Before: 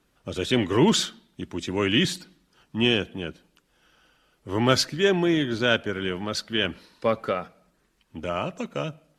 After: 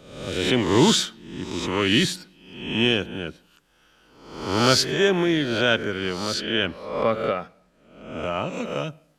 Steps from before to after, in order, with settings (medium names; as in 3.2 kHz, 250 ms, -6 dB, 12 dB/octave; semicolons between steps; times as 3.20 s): reverse spectral sustain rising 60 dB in 0.78 s; 6.34–8.53 s: treble shelf 11 kHz -12 dB